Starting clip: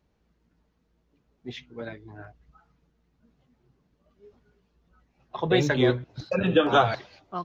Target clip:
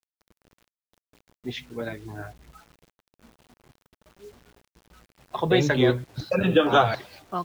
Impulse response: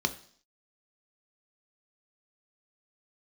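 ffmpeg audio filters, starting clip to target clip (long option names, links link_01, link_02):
-filter_complex "[0:a]asplit=2[link_01][link_02];[link_02]acompressor=threshold=-38dB:ratio=4,volume=1.5dB[link_03];[link_01][link_03]amix=inputs=2:normalize=0,acrusher=bits=8:mix=0:aa=0.000001"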